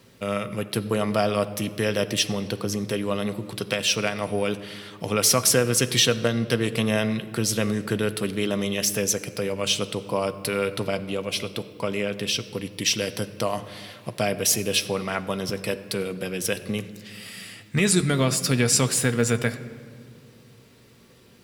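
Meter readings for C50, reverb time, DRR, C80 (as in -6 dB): 14.0 dB, 2.1 s, 9.5 dB, 15.0 dB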